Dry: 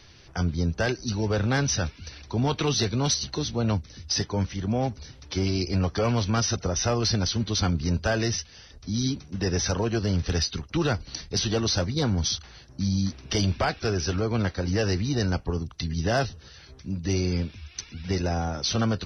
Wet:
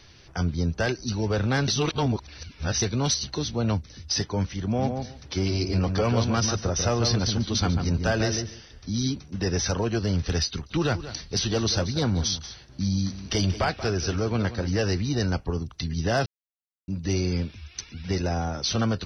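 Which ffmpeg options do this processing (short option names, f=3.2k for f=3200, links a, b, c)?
-filter_complex "[0:a]asettb=1/sr,asplit=3[a][b][c];[a]atrim=end=4.634[d];[b]atrim=start=4.63:end=8.98,asetpts=PTS-STARTPTS,afade=t=in:d=0.004:c=qsin,afade=t=out:st=4.346:d=0.004:c=qsin,asplit=2[e][f];[f]adelay=144,lowpass=f=1.5k:p=1,volume=-5dB,asplit=2[g][h];[h]adelay=144,lowpass=f=1.5k:p=1,volume=0.17,asplit=2[i][j];[j]adelay=144,lowpass=f=1.5k:p=1,volume=0.17[k];[e][g][i][k]amix=inputs=4:normalize=0,atrim=end_sample=191835[l];[c]atrim=start=8.976[m];[d][l]acrossfade=d=0.004:c1=hsin:c2=qsin[n];[n][m]acrossfade=d=0.004:c1=qsin:c2=hsin,asettb=1/sr,asplit=3[o][p][q];[o]atrim=end=10.484[r];[p]atrim=start=10.48:end=14.81,asetpts=PTS-STARTPTS,afade=t=in:d=0.004:c=qsin,afade=t=out:st=4.326:d=0.004:c=qsin,aecho=1:1:183:0.211,atrim=end_sample=190953[s];[q]atrim=start=14.806[t];[r][s]acrossfade=d=0.004:c1=hsin:c2=qsin[u];[u][t]acrossfade=d=0.004:c1=qsin:c2=hsin,asplit=5[v][w][x][y][z];[v]atrim=end=1.682[aa];[w]atrim=start=1.678:end=2.822,asetpts=PTS-STARTPTS,areverse[ab];[x]atrim=start=2.818:end=16.26,asetpts=PTS-STARTPTS,afade=t=out:st=13.438:d=0.004:c=hsin[ac];[y]atrim=start=16.26:end=16.88,asetpts=PTS-STARTPTS,volume=0[ad];[z]atrim=start=16.88,asetpts=PTS-STARTPTS,afade=t=in:d=0.004:c=hsin[ae];[aa][ab]acrossfade=d=0.004:c1=hsin:c2=hsin[af];[ac][ad][ae]concat=n=3:v=0:a=1[ag];[af][ag]acrossfade=d=0.004:c1=hsin:c2=hsin"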